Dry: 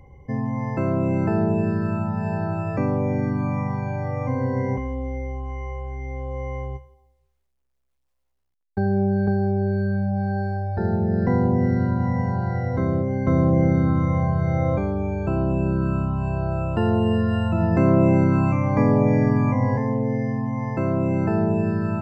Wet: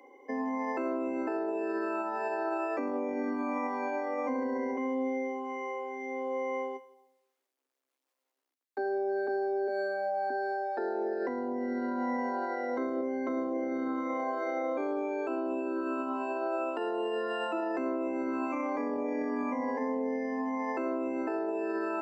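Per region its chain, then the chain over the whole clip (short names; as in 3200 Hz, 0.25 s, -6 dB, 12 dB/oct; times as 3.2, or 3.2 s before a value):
9.67–10.3 notch 310 Hz, Q 6.3 + comb 6.6 ms, depth 95%
whole clip: Chebyshev high-pass 250 Hz, order 8; compressor, threshold -24 dBFS; limiter -26.5 dBFS; gain +1.5 dB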